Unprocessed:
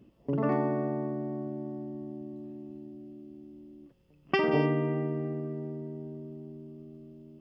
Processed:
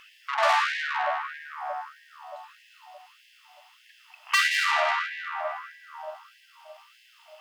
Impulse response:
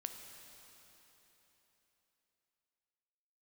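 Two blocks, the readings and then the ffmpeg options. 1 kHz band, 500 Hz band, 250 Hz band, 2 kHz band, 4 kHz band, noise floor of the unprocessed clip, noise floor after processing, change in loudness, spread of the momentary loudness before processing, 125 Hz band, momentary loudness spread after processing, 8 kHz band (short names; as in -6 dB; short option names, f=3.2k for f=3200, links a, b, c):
+11.0 dB, -3.5 dB, under -40 dB, +14.0 dB, +16.0 dB, -62 dBFS, -58 dBFS, +6.0 dB, 21 LU, under -40 dB, 22 LU, n/a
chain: -filter_complex "[0:a]asplit=2[a][b];[b]highpass=f=720:p=1,volume=34dB,asoftclip=type=tanh:threshold=-9.5dB[c];[a][c]amix=inputs=2:normalize=0,lowpass=f=4k:p=1,volume=-6dB,afftfilt=real='re*gte(b*sr/1024,600*pow(1600/600,0.5+0.5*sin(2*PI*1.6*pts/sr)))':imag='im*gte(b*sr/1024,600*pow(1600/600,0.5+0.5*sin(2*PI*1.6*pts/sr)))':win_size=1024:overlap=0.75"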